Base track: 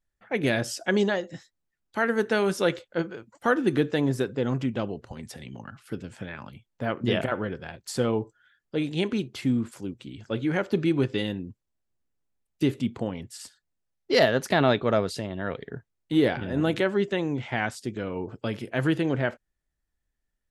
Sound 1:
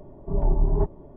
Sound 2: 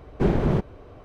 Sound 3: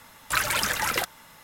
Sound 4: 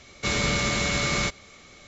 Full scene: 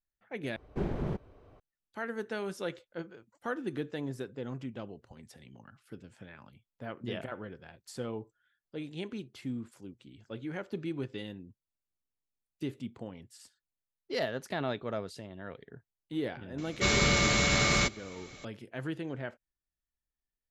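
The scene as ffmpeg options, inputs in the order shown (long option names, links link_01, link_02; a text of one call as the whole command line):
ffmpeg -i bed.wav -i cue0.wav -i cue1.wav -i cue2.wav -i cue3.wav -filter_complex "[0:a]volume=-12.5dB,asplit=2[link_01][link_02];[link_01]atrim=end=0.564[link_03];[2:a]atrim=end=1.04,asetpts=PTS-STARTPTS,volume=-12dB[link_04];[link_02]atrim=start=1.596[link_05];[4:a]atrim=end=1.87,asetpts=PTS-STARTPTS,volume=-1dB,afade=type=in:duration=0.004:curve=hsin,afade=type=out:start_time=1.866:duration=0.004:curve=hsin,adelay=16580[link_06];[link_03][link_04]acrossfade=duration=0.004:curve1=hsin:curve2=hsin[link_07];[link_07][link_05]acrossfade=duration=0.004:curve1=hsin:curve2=hsin[link_08];[link_08][link_06]amix=inputs=2:normalize=0" out.wav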